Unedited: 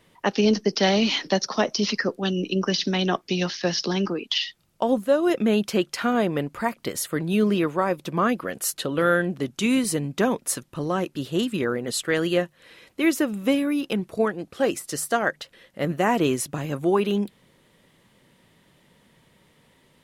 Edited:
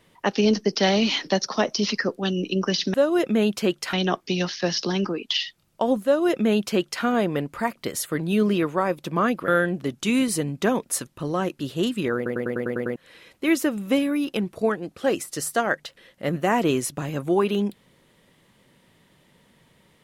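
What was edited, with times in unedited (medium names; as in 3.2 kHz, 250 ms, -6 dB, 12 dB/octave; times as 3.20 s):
5.05–6.04 s: copy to 2.94 s
8.49–9.04 s: delete
11.72 s: stutter in place 0.10 s, 8 plays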